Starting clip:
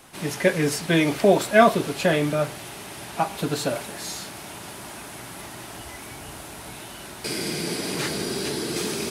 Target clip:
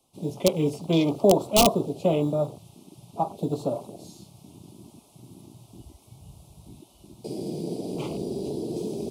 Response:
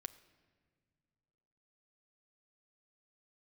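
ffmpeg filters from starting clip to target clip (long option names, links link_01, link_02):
-filter_complex "[0:a]afwtdn=0.0316,acrossover=split=160[link_01][link_02];[link_01]acrusher=samples=12:mix=1:aa=0.000001[link_03];[link_02]aeval=exprs='(mod(2.37*val(0)+1,2)-1)/2.37':channel_layout=same[link_04];[link_03][link_04]amix=inputs=2:normalize=0,asuperstop=centerf=1700:order=4:qfactor=0.86,volume=-1dB"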